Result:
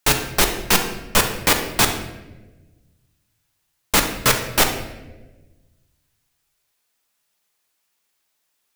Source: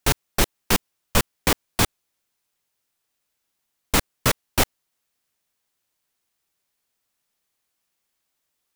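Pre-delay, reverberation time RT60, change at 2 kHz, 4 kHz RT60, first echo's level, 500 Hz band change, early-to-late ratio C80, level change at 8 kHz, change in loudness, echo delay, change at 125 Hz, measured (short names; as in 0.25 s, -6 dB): 5 ms, 1.2 s, +6.0 dB, 0.75 s, none, +3.5 dB, 9.5 dB, +5.5 dB, +4.5 dB, none, 0.0 dB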